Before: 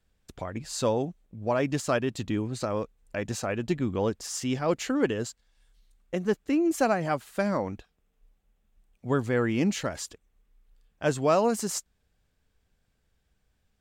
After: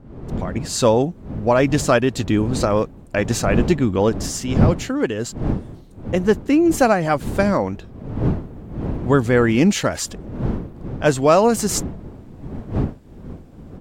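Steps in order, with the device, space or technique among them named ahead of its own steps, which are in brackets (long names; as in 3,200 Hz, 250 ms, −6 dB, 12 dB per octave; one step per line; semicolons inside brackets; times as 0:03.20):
smartphone video outdoors (wind on the microphone 230 Hz; automatic gain control gain up to 15 dB; level −1 dB; AAC 96 kbit/s 44,100 Hz)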